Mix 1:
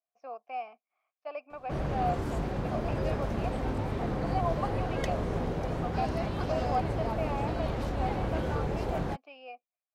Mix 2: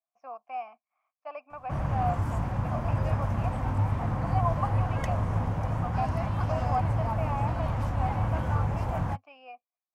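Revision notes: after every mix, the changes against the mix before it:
master: add fifteen-band EQ 100 Hz +11 dB, 400 Hz -12 dB, 1000 Hz +7 dB, 4000 Hz -9 dB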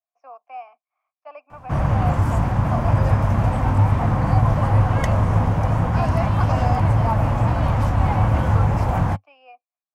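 speech: add steep high-pass 280 Hz 48 dB/oct; background +10.0 dB

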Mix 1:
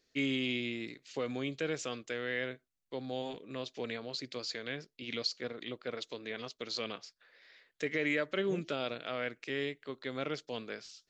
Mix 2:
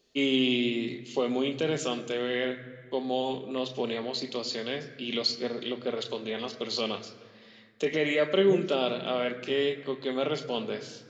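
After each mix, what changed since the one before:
second voice +10.5 dB; reverb: on, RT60 1.9 s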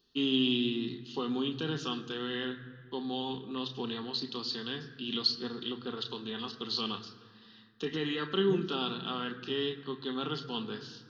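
master: add fixed phaser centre 2200 Hz, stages 6

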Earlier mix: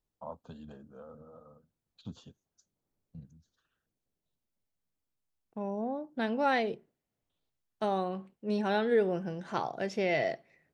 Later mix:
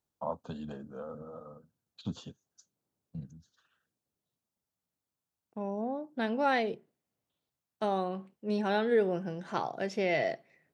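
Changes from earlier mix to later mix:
first voice +7.5 dB; master: add HPF 100 Hz 12 dB/oct

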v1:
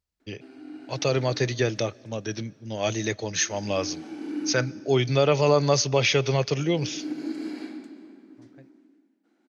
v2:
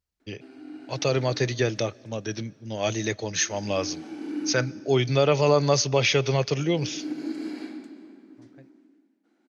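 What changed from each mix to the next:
none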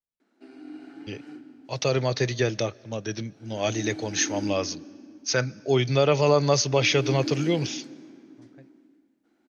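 first voice: entry +0.80 s

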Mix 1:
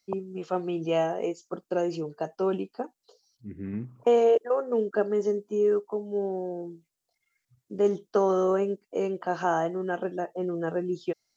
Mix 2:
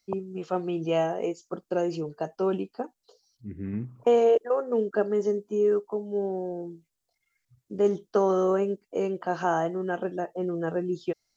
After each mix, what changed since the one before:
master: add low shelf 75 Hz +10.5 dB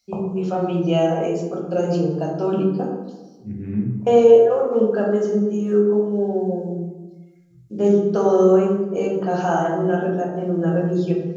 reverb: on, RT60 1.2 s

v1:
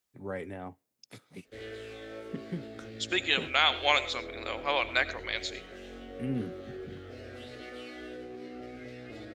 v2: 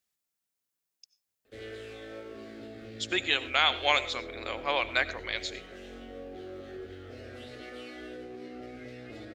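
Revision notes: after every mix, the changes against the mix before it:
first voice: muted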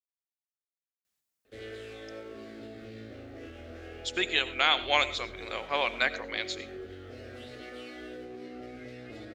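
speech: entry +1.05 s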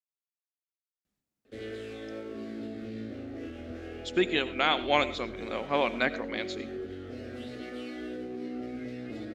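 speech: add tilt -2.5 dB/oct; master: add bell 230 Hz +9.5 dB 1.3 oct

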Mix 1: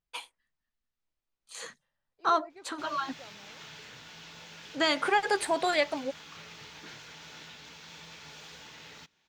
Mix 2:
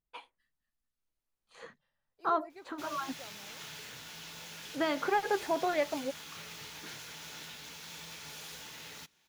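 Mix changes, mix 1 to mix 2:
first voice: add tape spacing loss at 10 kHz 41 dB; master: remove running mean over 4 samples

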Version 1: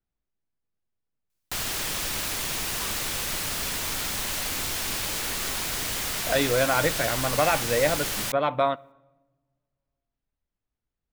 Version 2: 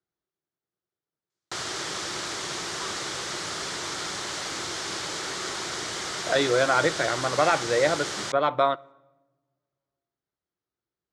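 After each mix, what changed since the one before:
speech: add high shelf 4300 Hz +8 dB; master: add speaker cabinet 140–7300 Hz, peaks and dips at 240 Hz -8 dB, 360 Hz +8 dB, 1300 Hz +4 dB, 2600 Hz -7 dB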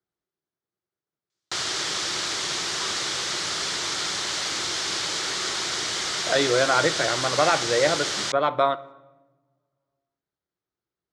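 speech: send +8.0 dB; background: add bell 4000 Hz +7 dB 2.3 oct

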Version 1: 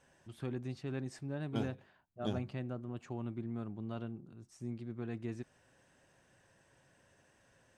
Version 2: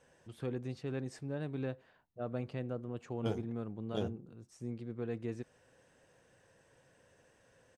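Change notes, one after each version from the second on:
second voice: entry +1.70 s; master: add bell 480 Hz +11 dB 0.25 oct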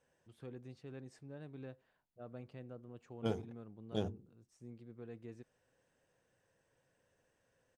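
first voice -11.0 dB

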